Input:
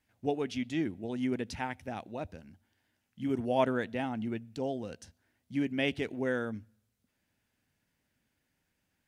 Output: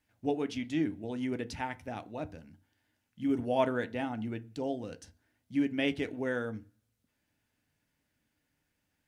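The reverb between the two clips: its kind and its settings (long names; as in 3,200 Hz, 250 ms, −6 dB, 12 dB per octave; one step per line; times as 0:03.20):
feedback delay network reverb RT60 0.31 s, low-frequency decay 1.1×, high-frequency decay 0.55×, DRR 10 dB
level −1 dB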